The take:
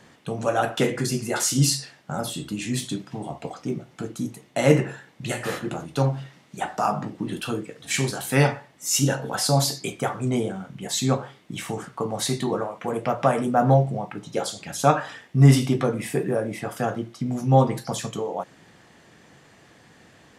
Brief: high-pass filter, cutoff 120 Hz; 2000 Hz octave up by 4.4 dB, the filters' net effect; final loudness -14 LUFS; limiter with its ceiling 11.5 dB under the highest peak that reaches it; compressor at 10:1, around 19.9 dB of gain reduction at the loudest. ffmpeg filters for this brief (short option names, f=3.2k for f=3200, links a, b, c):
-af "highpass=120,equalizer=f=2k:t=o:g=5.5,acompressor=threshold=-31dB:ratio=10,volume=24.5dB,alimiter=limit=-4dB:level=0:latency=1"